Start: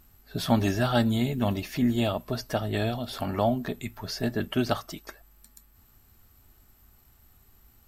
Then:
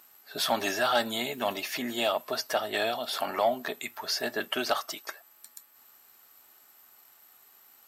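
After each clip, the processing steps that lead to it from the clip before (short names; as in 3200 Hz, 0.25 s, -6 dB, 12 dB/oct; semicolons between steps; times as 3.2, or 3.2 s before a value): in parallel at -1 dB: limiter -18 dBFS, peak gain reduction 7.5 dB; on the sum: HPF 610 Hz 12 dB/oct; soft clip -13.5 dBFS, distortion -22 dB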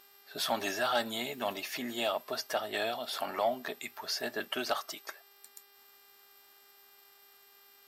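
buzz 400 Hz, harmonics 14, -60 dBFS -1 dB/oct; gain -4.5 dB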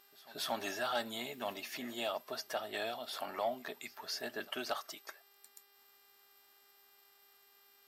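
pre-echo 0.231 s -22 dB; gain -5.5 dB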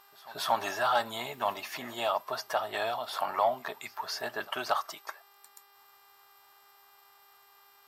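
graphic EQ 125/250/1000 Hz +7/-6/+12 dB; gain +3 dB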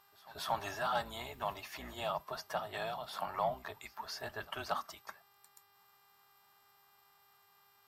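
octaver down 2 oct, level 0 dB; gain -7.5 dB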